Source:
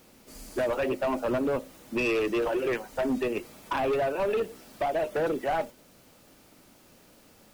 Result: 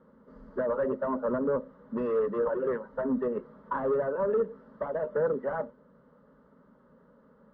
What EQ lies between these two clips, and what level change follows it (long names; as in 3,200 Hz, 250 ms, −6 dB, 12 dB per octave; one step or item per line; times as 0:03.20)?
high-pass filter 50 Hz
Bessel low-pass filter 1,300 Hz, order 4
phaser with its sweep stopped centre 490 Hz, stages 8
+2.5 dB